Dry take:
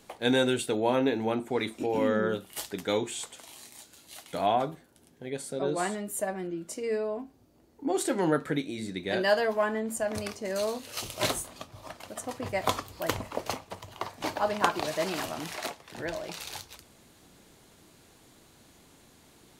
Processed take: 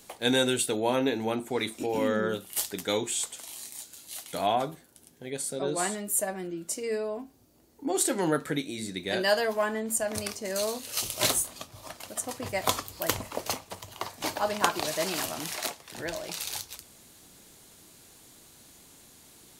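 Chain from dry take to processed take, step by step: high shelf 4400 Hz +11.5 dB; gain -1 dB

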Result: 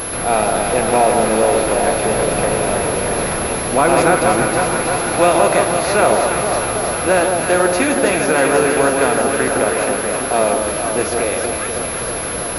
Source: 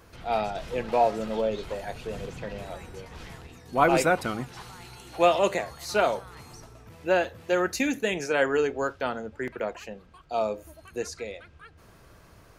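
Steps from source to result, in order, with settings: per-bin compression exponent 0.6; notch 3000 Hz, Q 6.2; in parallel at -0.5 dB: compressor, threshold -29 dBFS, peak gain reduction 14.5 dB; on the sum: requantised 6-bit, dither triangular; on a send: echo with dull and thin repeats by turns 0.161 s, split 1300 Hz, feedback 86%, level -4 dB; on the sum: maximiser +4.5 dB; pulse-width modulation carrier 11000 Hz; gain -1 dB

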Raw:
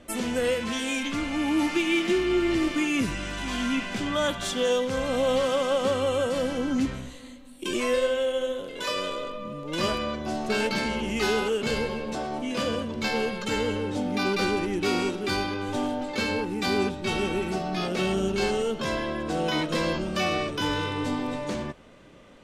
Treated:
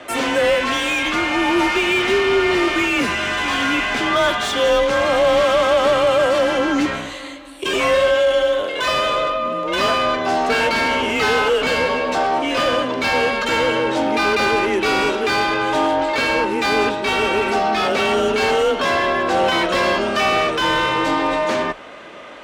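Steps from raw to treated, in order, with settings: tilt shelf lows -5 dB, about 650 Hz; overdrive pedal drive 19 dB, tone 1100 Hz, clips at -14 dBFS; frequency shift +29 Hz; gain +7.5 dB

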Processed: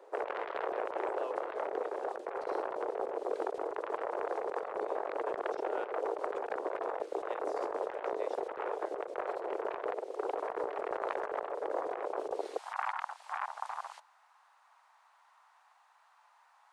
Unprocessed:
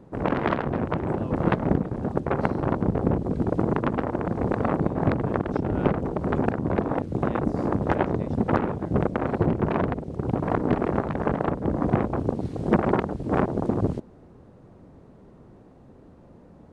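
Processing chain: steep high-pass 410 Hz 48 dB/oct, from 12.57 s 850 Hz; negative-ratio compressor -34 dBFS, ratio -1; gain -2.5 dB

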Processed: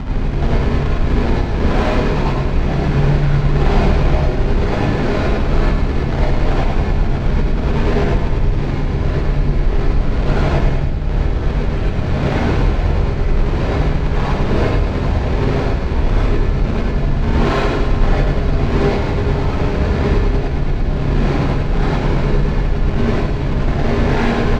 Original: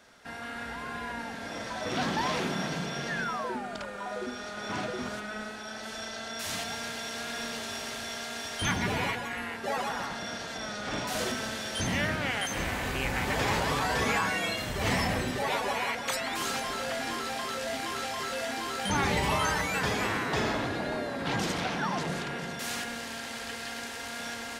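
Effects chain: wind noise 240 Hz -32 dBFS; tilt -4.5 dB/oct; notches 60/120/180/240 Hz; limiter -17 dBFS, peak gain reduction 22.5 dB; negative-ratio compressor -33 dBFS, ratio -0.5; fuzz box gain 47 dB, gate -54 dBFS; decimation with a swept rate 38×, swing 160% 2.1 Hz; air absorption 180 m; on a send: feedback echo 0.105 s, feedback 56%, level -7 dB; on the sum: non-linear reverb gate 0.13 s rising, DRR -5.5 dB; gain -7.5 dB

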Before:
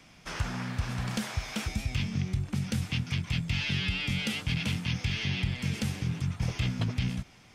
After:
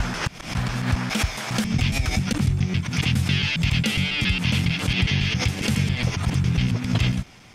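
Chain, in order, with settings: slices in reverse order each 0.137 s, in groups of 4; backwards sustainer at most 110 dB/s; gain +8 dB

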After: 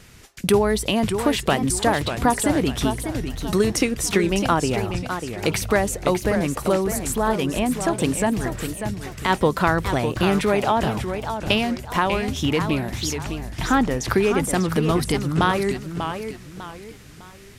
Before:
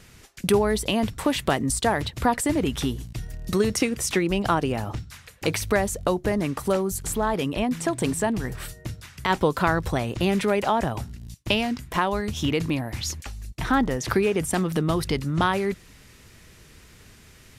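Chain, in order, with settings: warbling echo 0.599 s, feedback 35%, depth 198 cents, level -8 dB; gain +2.5 dB

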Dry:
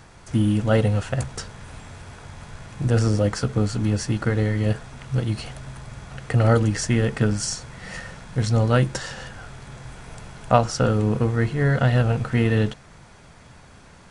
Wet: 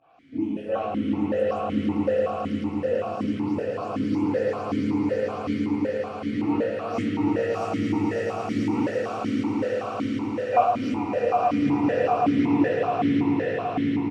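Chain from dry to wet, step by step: spectral delay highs late, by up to 0.189 s; harmoniser -3 st -7 dB, +5 st -17 dB, +12 st -10 dB; swelling echo 0.11 s, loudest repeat 8, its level -5.5 dB; reverb RT60 1.6 s, pre-delay 5 ms, DRR -1 dB; vowel sequencer 5.3 Hz

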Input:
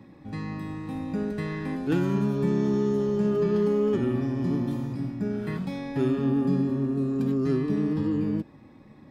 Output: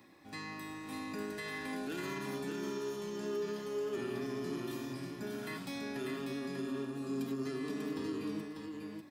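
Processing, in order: tilt +3.5 dB/oct; notches 50/100/150/200/250/300 Hz; comb 2.9 ms, depth 32%; limiter -27 dBFS, peak gain reduction 10 dB; echo 0.594 s -4.5 dB; gain -5 dB

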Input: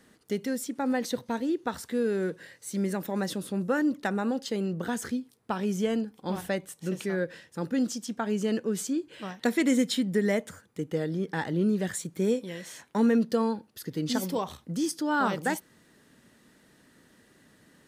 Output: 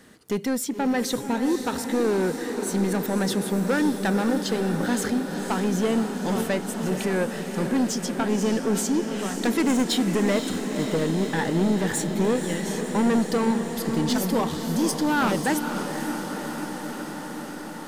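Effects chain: soft clip -26 dBFS, distortion -11 dB; diffused feedback echo 0.52 s, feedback 78%, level -8 dB; gain +7.5 dB

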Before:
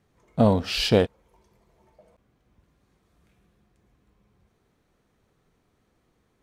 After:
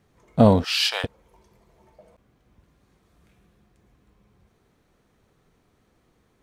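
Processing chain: 0.64–1.04 HPF 920 Hz 24 dB/oct; gain +4 dB

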